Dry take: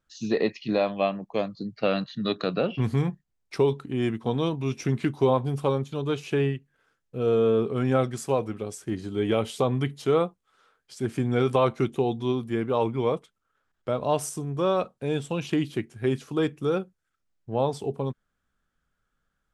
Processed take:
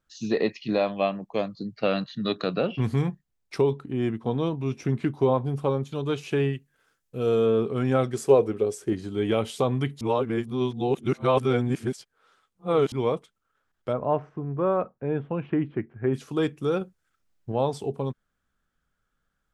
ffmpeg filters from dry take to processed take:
-filter_complex "[0:a]asettb=1/sr,asplit=3[s0][s1][s2];[s0]atrim=end=3.614[s3];[s1]atrim=start=3.61:end=5.83,asetpts=PTS-STARTPTS,afade=t=in:d=0.004:c=qsin,afade=t=out:st=2.216:d=0.004:c=qsin,highshelf=f=2200:g=-8[s4];[s2]atrim=start=5.826[s5];[s3][s4]acrossfade=d=0.004:c1=hsin:c2=qsin[s6];[s6][s5]acrossfade=d=0.004:c1=qsin:c2=hsin,asettb=1/sr,asplit=3[s7][s8][s9];[s7]atrim=end=6.534[s10];[s8]atrim=start=6.53:end=7.46,asetpts=PTS-STARTPTS,afade=t=in:d=0.004:c=qsin,afade=t=out:st=0.926:d=0.004:c=qsin,aemphasis=mode=production:type=cd[s11];[s9]atrim=start=7.456[s12];[s10][s11]acrossfade=d=0.004:c1=hsin:c2=qsin[s13];[s13][s12]acrossfade=d=0.004:c1=qsin:c2=hsin,asettb=1/sr,asplit=3[s14][s15][s16];[s14]atrim=end=8.134[s17];[s15]atrim=start=8.13:end=8.93,asetpts=PTS-STARTPTS,afade=t=in:d=0.004:c=qsin,afade=t=out:st=0.796:d=0.004:c=qsin,equalizer=f=420:w=2.2:g=11.5[s18];[s16]atrim=start=8.926[s19];[s17][s18]acrossfade=d=0.004:c1=hsin:c2=qsin[s20];[s20][s19]acrossfade=d=0.004:c1=qsin:c2=hsin,asplit=3[s21][s22][s23];[s21]afade=t=out:st=13.92:d=0.02[s24];[s22]lowpass=f=1900:w=0.5412,lowpass=f=1900:w=1.3066,afade=t=in:st=13.92:d=0.02,afade=t=out:st=16.13:d=0.02[s25];[s23]afade=t=in:st=16.13:d=0.02[s26];[s24][s25][s26]amix=inputs=3:normalize=0,asettb=1/sr,asplit=3[s27][s28][s29];[s27]atrim=end=16.814[s30];[s28]atrim=start=16.81:end=17.52,asetpts=PTS-STARTPTS,afade=t=in:d=0.004:c=qsin,afade=t=out:st=0.706:d=0.004:c=qsin,acontrast=27[s31];[s29]atrim=start=17.516[s32];[s30][s31]acrossfade=d=0.004:c1=hsin:c2=qsin[s33];[s33][s32]acrossfade=d=0.004:c1=qsin:c2=hsin,asplit=3[s34][s35][s36];[s34]atrim=end=10.012[s37];[s35]atrim=start=10.008:end=12.922,asetpts=PTS-STARTPTS,areverse[s38];[s36]atrim=start=12.918[s39];[s37][s38]acrossfade=d=0.004:c1=hsin:c2=hsin[s40];[s40][s39]acrossfade=d=0.004:c1=hsin:c2=hsin"

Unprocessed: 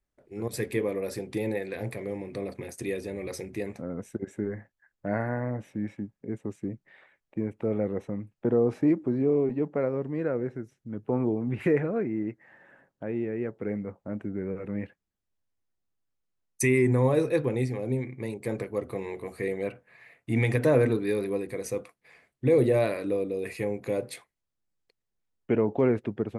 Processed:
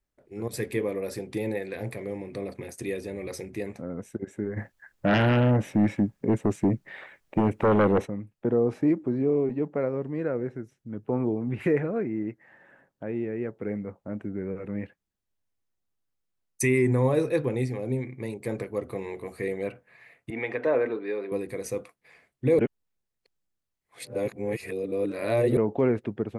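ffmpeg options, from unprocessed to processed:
-filter_complex "[0:a]asplit=3[s0][s1][s2];[s0]afade=t=out:st=4.56:d=0.02[s3];[s1]aeval=exprs='0.158*sin(PI/2*2.82*val(0)/0.158)':c=same,afade=t=in:st=4.56:d=0.02,afade=t=out:st=8.05:d=0.02[s4];[s2]afade=t=in:st=8.05:d=0.02[s5];[s3][s4][s5]amix=inputs=3:normalize=0,asettb=1/sr,asplit=3[s6][s7][s8];[s6]atrim=end=20.304[s9];[s7]atrim=start=20.3:end=21.32,asetpts=PTS-STARTPTS,afade=t=in:d=0.004:c=qsin,afade=t=out:st=1.016:d=0.004:c=qsin,highpass=410,lowpass=2400[s10];[s8]atrim=start=21.316[s11];[s9][s10]acrossfade=d=0.004:c1=hsin:c2=qsin[s12];[s12][s11]acrossfade=d=0.004:c1=qsin:c2=hsin,asplit=3[s13][s14][s15];[s13]atrim=end=22.592[s16];[s14]atrim=start=22.588:end=25.572,asetpts=PTS-STARTPTS,areverse[s17];[s15]atrim=start=25.568[s18];[s16][s17]acrossfade=d=0.004:c1=hsin:c2=hsin[s19];[s19][s18]acrossfade=d=0.004:c1=hsin:c2=hsin"

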